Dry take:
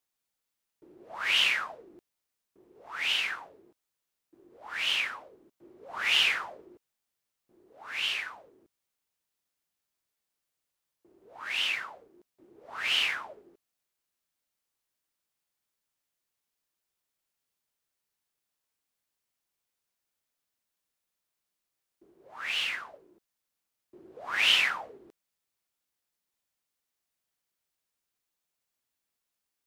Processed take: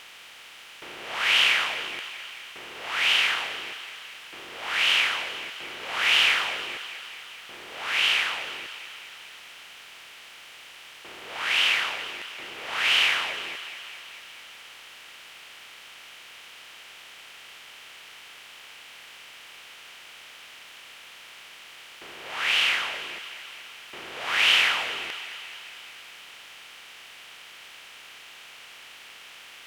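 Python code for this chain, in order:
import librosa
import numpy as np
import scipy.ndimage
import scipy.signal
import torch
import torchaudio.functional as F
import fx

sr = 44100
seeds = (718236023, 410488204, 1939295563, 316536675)

p1 = fx.bin_compress(x, sr, power=0.4)
y = p1 + fx.echo_thinned(p1, sr, ms=215, feedback_pct=67, hz=420.0, wet_db=-12.5, dry=0)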